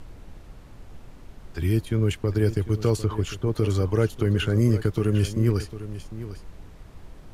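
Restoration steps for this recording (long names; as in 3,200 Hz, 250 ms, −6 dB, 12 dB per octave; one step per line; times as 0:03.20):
noise reduction from a noise print 25 dB
echo removal 751 ms −13.5 dB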